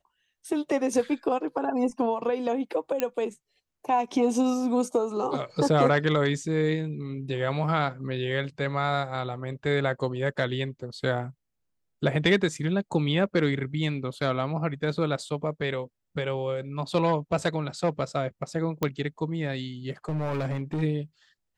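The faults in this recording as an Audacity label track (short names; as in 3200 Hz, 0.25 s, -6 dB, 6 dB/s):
3.000000	3.000000	pop -11 dBFS
18.830000	18.830000	pop -12 dBFS
20.080000	20.830000	clipped -25 dBFS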